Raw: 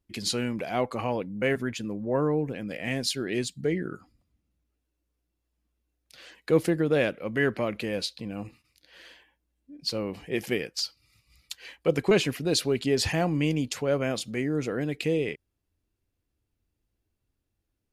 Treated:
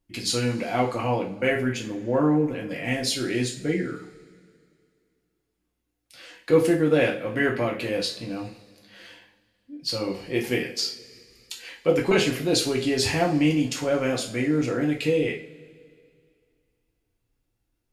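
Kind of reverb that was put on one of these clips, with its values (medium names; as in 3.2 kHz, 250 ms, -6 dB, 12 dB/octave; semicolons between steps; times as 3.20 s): two-slope reverb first 0.37 s, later 2.4 s, from -22 dB, DRR -2 dB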